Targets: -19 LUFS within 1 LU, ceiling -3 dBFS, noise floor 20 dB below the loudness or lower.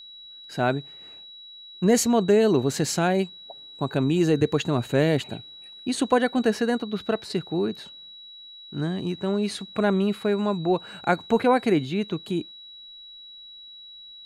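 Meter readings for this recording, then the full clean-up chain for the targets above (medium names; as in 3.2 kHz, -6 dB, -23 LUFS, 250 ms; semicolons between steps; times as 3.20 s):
steady tone 3.9 kHz; tone level -42 dBFS; loudness -24.5 LUFS; peak level -7.0 dBFS; loudness target -19.0 LUFS
-> band-stop 3.9 kHz, Q 30; trim +5.5 dB; peak limiter -3 dBFS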